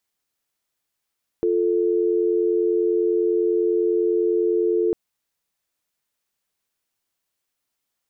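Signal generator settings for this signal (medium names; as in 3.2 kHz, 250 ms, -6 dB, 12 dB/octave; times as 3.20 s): call progress tone dial tone, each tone -20 dBFS 3.50 s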